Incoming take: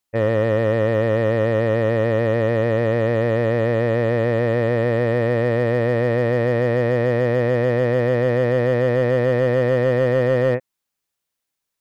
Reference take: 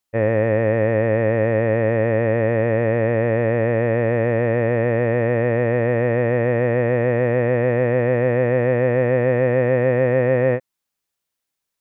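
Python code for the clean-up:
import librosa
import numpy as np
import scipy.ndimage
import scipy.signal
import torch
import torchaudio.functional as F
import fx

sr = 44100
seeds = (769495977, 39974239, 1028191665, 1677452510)

y = fx.fix_declip(x, sr, threshold_db=-11.0)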